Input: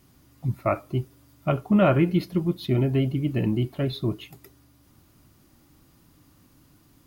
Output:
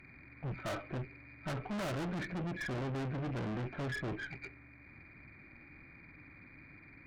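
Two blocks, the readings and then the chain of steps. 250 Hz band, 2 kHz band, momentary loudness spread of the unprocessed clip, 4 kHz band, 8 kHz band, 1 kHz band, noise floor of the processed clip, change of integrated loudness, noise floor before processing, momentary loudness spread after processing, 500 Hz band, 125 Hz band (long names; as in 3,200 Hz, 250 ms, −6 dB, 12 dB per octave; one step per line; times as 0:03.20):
−16.0 dB, −3.5 dB, 12 LU, −10.0 dB, can't be measured, −11.5 dB, −57 dBFS, −14.5 dB, −59 dBFS, 17 LU, −15.5 dB, −14.0 dB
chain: hearing-aid frequency compression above 1,300 Hz 4 to 1
tube saturation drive 38 dB, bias 0.55
level +2 dB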